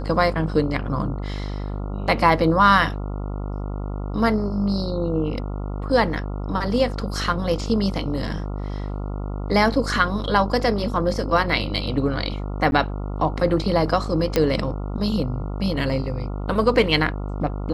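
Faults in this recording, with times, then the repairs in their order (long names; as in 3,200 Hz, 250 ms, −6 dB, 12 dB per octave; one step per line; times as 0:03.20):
mains buzz 50 Hz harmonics 28 −28 dBFS
0:12.71–0:12.72: drop-out 11 ms
0:14.36: click −5 dBFS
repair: click removal
hum removal 50 Hz, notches 28
repair the gap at 0:12.71, 11 ms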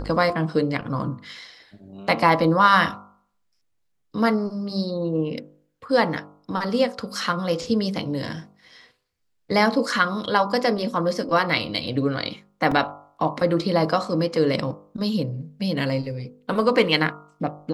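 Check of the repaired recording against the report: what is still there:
none of them is left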